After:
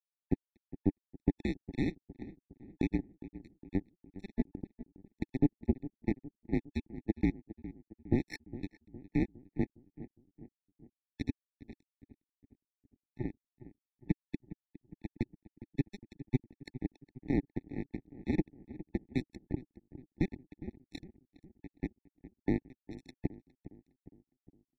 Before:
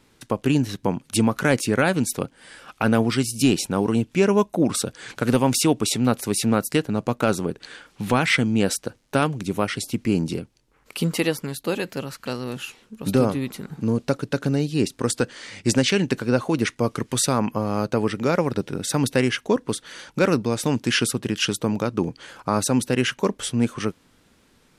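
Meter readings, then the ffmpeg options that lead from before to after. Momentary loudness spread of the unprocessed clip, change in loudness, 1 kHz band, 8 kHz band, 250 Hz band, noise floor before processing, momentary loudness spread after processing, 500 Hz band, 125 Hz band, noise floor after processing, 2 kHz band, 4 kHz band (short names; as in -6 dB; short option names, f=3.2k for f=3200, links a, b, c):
10 LU, -14.5 dB, -26.5 dB, under -40 dB, -13.5 dB, -60 dBFS, 21 LU, -21.0 dB, -14.0 dB, under -85 dBFS, -23.0 dB, -30.5 dB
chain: -filter_complex "[0:a]bandreject=f=50:t=h:w=6,bandreject=f=100:t=h:w=6,bandreject=f=150:t=h:w=6,bandreject=f=200:t=h:w=6,bandreject=f=250:t=h:w=6,highpass=f=310:t=q:w=0.5412,highpass=f=310:t=q:w=1.307,lowpass=f=2.2k:t=q:w=0.5176,lowpass=f=2.2k:t=q:w=0.7071,lowpass=f=2.2k:t=q:w=1.932,afreqshift=-390,highpass=f=160:p=1,alimiter=limit=-14.5dB:level=0:latency=1:release=276,acrusher=bits=2:mix=0:aa=0.5,lowshelf=f=420:t=q:w=3:g=11.5,asplit=2[a][b];[b]adelay=410,lowpass=f=1.3k:p=1,volume=-15dB,asplit=2[c][d];[d]adelay=410,lowpass=f=1.3k:p=1,volume=0.53,asplit=2[e][f];[f]adelay=410,lowpass=f=1.3k:p=1,volume=0.53,asplit=2[g][h];[h]adelay=410,lowpass=f=1.3k:p=1,volume=0.53,asplit=2[i][j];[j]adelay=410,lowpass=f=1.3k:p=1,volume=0.53[k];[a][c][e][g][i][k]amix=inputs=6:normalize=0,afftfilt=real='re*eq(mod(floor(b*sr/1024/870),2),0)':imag='im*eq(mod(floor(b*sr/1024/870),2),0)':win_size=1024:overlap=0.75,volume=-8dB"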